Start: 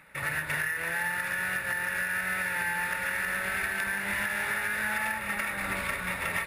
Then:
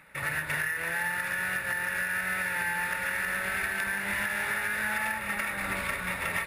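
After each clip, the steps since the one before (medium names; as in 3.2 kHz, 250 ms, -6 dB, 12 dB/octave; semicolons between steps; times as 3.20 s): no audible change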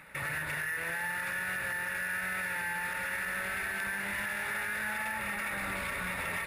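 peak limiter -30.5 dBFS, peak gain reduction 10.5 dB; trim +3 dB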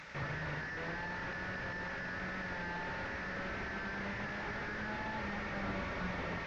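one-bit delta coder 32 kbps, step -53.5 dBFS; trim +2.5 dB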